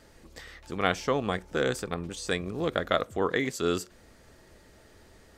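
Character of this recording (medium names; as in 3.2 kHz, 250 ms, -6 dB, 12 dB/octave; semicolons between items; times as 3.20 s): noise floor -56 dBFS; spectral tilt -4.5 dB/octave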